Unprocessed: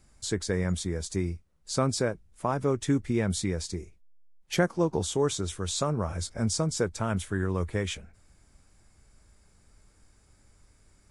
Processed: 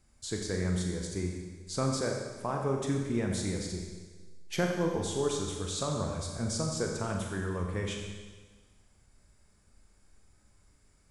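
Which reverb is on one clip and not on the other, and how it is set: Schroeder reverb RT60 1.4 s, combs from 30 ms, DRR 1 dB; gain -6 dB

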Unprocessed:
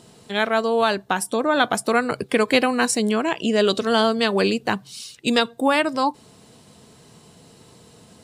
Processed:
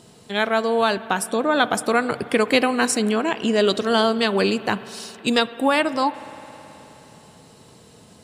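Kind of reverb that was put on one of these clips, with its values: spring tank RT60 3.9 s, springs 53 ms, chirp 75 ms, DRR 15 dB

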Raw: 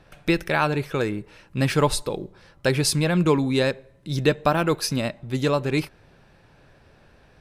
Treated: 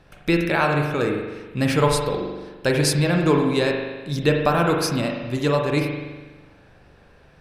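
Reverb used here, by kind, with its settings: spring tank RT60 1.3 s, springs 41 ms, chirp 70 ms, DRR 1.5 dB

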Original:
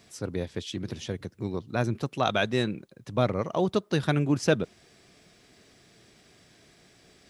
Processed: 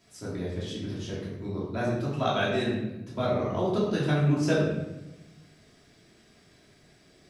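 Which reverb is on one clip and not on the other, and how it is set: shoebox room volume 370 m³, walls mixed, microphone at 2.9 m; gain -9.5 dB

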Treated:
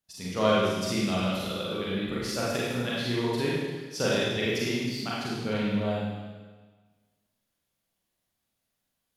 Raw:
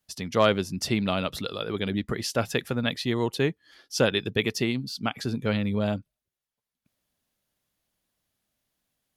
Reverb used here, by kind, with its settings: Schroeder reverb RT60 1.4 s, combs from 33 ms, DRR -7 dB; gain -9 dB

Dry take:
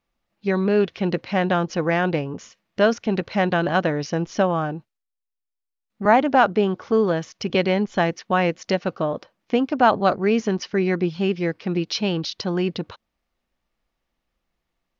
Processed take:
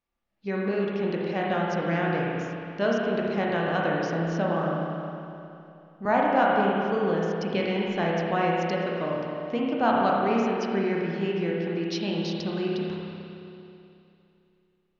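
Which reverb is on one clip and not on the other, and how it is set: spring tank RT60 2.8 s, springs 30/52 ms, chirp 60 ms, DRR -3.5 dB; gain -9.5 dB

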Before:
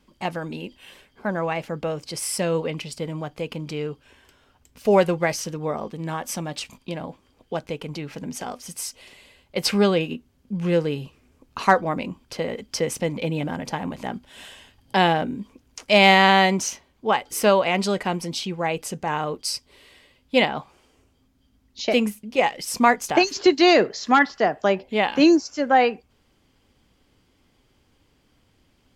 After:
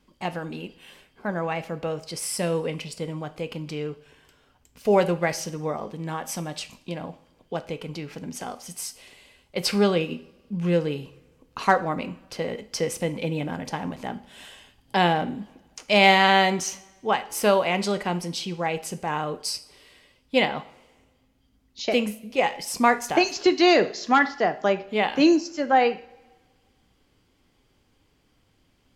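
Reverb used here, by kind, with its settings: two-slope reverb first 0.48 s, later 1.6 s, from -18 dB, DRR 10.5 dB; gain -2.5 dB

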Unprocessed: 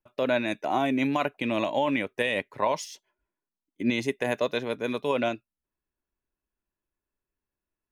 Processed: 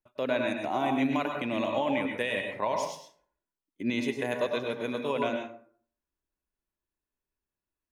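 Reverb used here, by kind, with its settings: plate-style reverb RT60 0.52 s, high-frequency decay 0.55×, pre-delay 90 ms, DRR 3 dB; gain -4.5 dB

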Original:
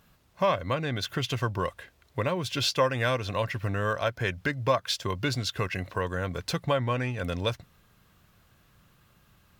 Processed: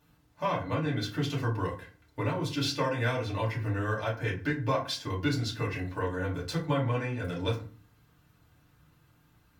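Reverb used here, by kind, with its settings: FDN reverb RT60 0.39 s, low-frequency decay 1.55×, high-frequency decay 0.6×, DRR -6 dB; gain -10.5 dB

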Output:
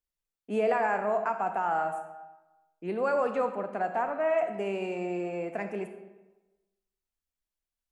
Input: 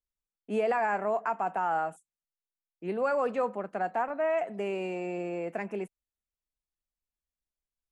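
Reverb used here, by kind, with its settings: digital reverb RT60 1.1 s, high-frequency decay 0.7×, pre-delay 5 ms, DRR 7 dB

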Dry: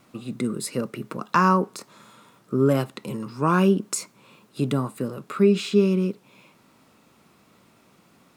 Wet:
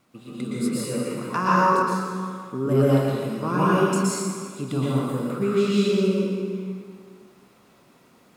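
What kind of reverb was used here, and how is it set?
plate-style reverb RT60 2 s, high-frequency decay 0.75×, pre-delay 0.105 s, DRR -8.5 dB; gain -7.5 dB

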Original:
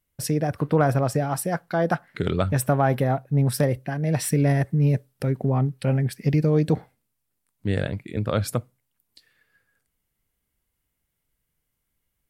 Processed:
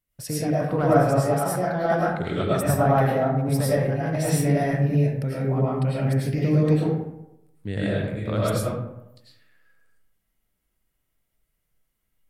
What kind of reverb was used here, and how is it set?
digital reverb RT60 0.87 s, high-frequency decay 0.5×, pre-delay 65 ms, DRR -7.5 dB; gain -6.5 dB

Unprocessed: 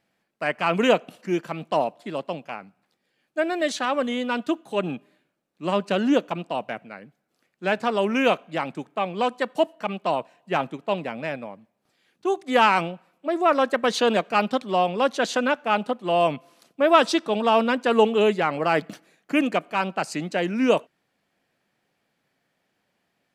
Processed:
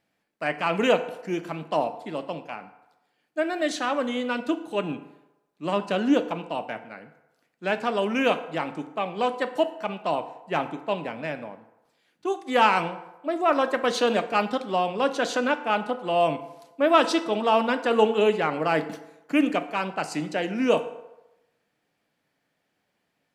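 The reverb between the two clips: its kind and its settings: FDN reverb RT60 0.98 s, low-frequency decay 0.7×, high-frequency decay 0.6×, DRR 8.5 dB; gain -2.5 dB

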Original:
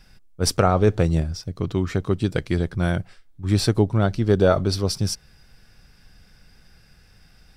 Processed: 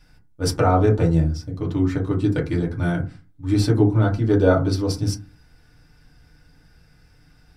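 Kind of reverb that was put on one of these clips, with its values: FDN reverb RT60 0.31 s, low-frequency decay 1.45×, high-frequency decay 0.35×, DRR -3 dB; gain -6 dB

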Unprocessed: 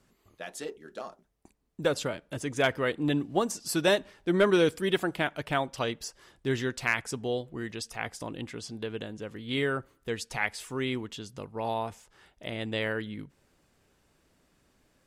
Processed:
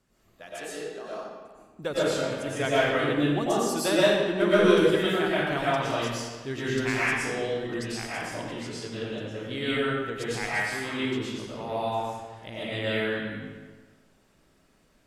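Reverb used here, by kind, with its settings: digital reverb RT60 1.4 s, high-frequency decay 0.8×, pre-delay 75 ms, DRR -9 dB; gain -5.5 dB

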